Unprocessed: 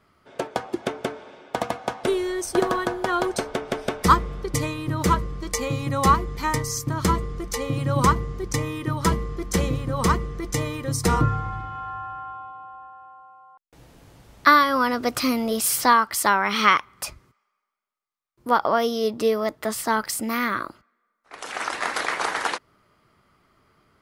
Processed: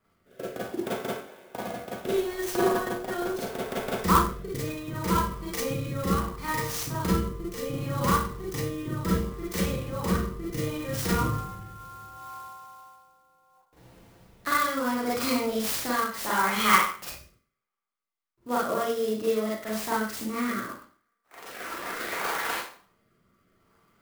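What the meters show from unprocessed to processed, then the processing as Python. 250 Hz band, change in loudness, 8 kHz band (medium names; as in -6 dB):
-3.0 dB, -5.0 dB, -6.5 dB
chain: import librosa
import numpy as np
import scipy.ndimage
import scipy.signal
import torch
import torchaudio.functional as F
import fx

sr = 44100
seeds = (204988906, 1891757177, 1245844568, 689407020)

y = fx.rev_schroeder(x, sr, rt60_s=0.45, comb_ms=33, drr_db=-6.5)
y = fx.rotary(y, sr, hz=0.7)
y = fx.clock_jitter(y, sr, seeds[0], jitter_ms=0.032)
y = y * 10.0 ** (-9.0 / 20.0)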